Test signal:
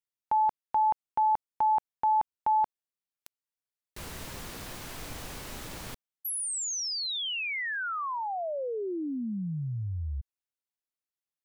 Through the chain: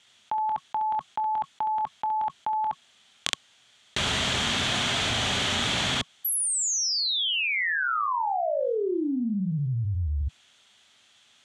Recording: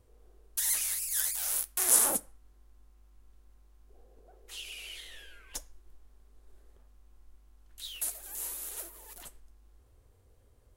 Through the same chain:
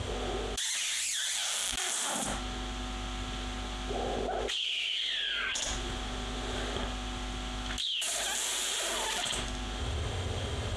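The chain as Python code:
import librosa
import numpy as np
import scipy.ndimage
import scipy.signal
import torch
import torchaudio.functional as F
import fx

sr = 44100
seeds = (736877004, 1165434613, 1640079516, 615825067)

y = fx.cabinet(x, sr, low_hz=110.0, low_slope=12, high_hz=7100.0, hz=(160.0, 320.0, 490.0, 950.0, 3300.0, 5100.0), db=(-7, -10, -9, -4, 10, -7))
y = fx.notch(y, sr, hz=1100.0, q=22.0)
y = fx.dynamic_eq(y, sr, hz=510.0, q=2.3, threshold_db=-51.0, ratio=4.0, max_db=-7)
y = fx.room_early_taps(y, sr, ms=(25, 68), db=(-12.0, -5.0))
y = fx.env_flatten(y, sr, amount_pct=100)
y = y * 10.0 ** (-4.0 / 20.0)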